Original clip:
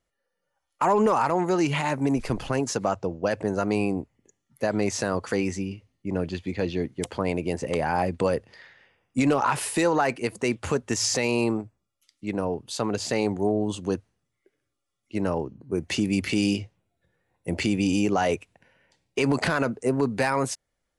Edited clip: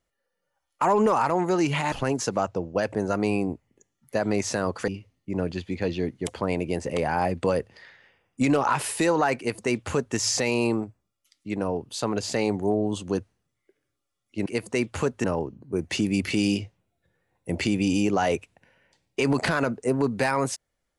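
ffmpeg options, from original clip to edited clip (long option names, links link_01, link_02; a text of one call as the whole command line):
ffmpeg -i in.wav -filter_complex "[0:a]asplit=5[link_01][link_02][link_03][link_04][link_05];[link_01]atrim=end=1.922[link_06];[link_02]atrim=start=2.398:end=5.362[link_07];[link_03]atrim=start=5.648:end=15.232[link_08];[link_04]atrim=start=10.148:end=10.932[link_09];[link_05]atrim=start=15.228[link_10];[link_06][link_07]acrossfade=duration=0.004:curve1=hsin:curve2=hsin[link_11];[link_11][link_08]acrossfade=duration=0.004:curve1=hsin:curve2=hsin[link_12];[link_12][link_09]acrossfade=duration=0.004:curve1=hsin:curve2=hsin[link_13];[link_13][link_10]acrossfade=duration=0.004:curve1=hsin:curve2=hsin" out.wav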